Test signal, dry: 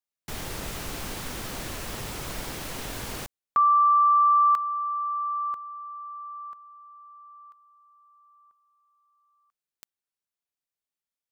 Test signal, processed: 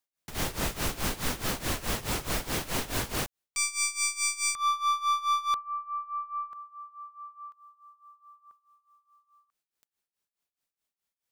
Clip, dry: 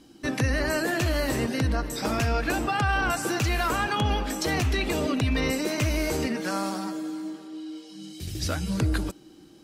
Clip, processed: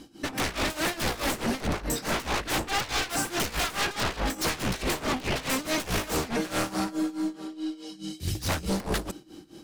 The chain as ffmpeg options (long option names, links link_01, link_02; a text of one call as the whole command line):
ffmpeg -i in.wav -af "aeval=exprs='0.168*(cos(1*acos(clip(val(0)/0.168,-1,1)))-cos(1*PI/2))+0.0335*(cos(2*acos(clip(val(0)/0.168,-1,1)))-cos(2*PI/2))+0.000944*(cos(3*acos(clip(val(0)/0.168,-1,1)))-cos(3*PI/2))+0.00211*(cos(5*acos(clip(val(0)/0.168,-1,1)))-cos(5*PI/2))':channel_layout=same,aeval=exprs='0.0422*(abs(mod(val(0)/0.0422+3,4)-2)-1)':channel_layout=same,tremolo=f=4.7:d=0.86,volume=7dB" out.wav